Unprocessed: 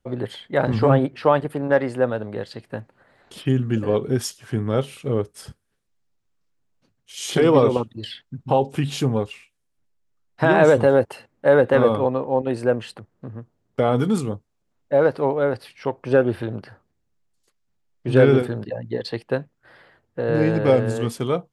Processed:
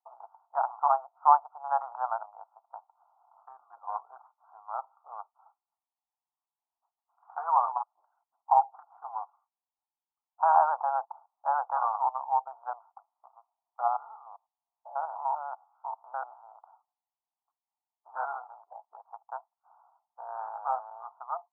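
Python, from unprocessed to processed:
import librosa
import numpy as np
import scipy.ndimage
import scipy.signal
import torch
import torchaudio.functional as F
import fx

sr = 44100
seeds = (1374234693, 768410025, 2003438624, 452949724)

y = fx.env_flatten(x, sr, amount_pct=50, at=(1.64, 2.26))
y = fx.spec_steps(y, sr, hold_ms=100, at=(13.87, 16.52))
y = fx.wiener(y, sr, points=25)
y = scipy.signal.sosfilt(scipy.signal.cheby1(4, 1.0, [690.0, 1400.0], 'bandpass', fs=sr, output='sos'), y)
y = fx.peak_eq(y, sr, hz=910.0, db=12.5, octaves=0.68)
y = y * librosa.db_to_amplitude(-6.5)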